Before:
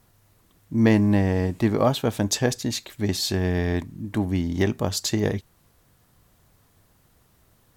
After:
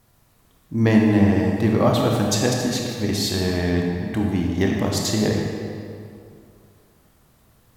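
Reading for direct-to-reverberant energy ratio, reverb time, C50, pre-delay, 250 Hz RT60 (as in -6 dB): -0.5 dB, 2.5 s, 0.5 dB, 21 ms, 2.5 s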